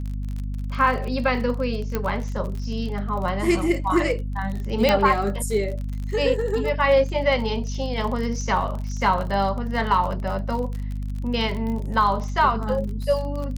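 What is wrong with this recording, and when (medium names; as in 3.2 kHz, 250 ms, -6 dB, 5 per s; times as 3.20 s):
crackle 36 per s -29 dBFS
hum 50 Hz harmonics 5 -28 dBFS
1.95 s: pop -11 dBFS
4.89 s: pop -5 dBFS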